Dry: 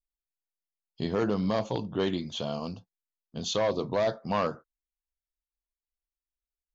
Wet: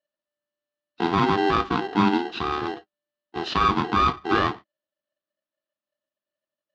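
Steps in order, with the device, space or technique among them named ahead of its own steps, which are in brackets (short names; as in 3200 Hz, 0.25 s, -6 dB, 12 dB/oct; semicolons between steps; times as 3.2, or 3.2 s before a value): ring modulator pedal into a guitar cabinet (polarity switched at an audio rate 590 Hz; speaker cabinet 86–4000 Hz, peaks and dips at 210 Hz +7 dB, 320 Hz +10 dB, 520 Hz -5 dB, 1200 Hz +5 dB, 2200 Hz -6 dB); gain +5 dB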